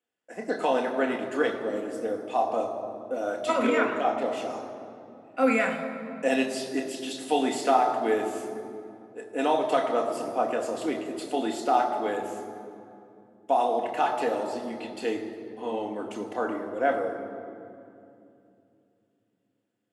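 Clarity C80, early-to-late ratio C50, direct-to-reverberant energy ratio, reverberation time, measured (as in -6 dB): 8.0 dB, 7.0 dB, 1.5 dB, 2.7 s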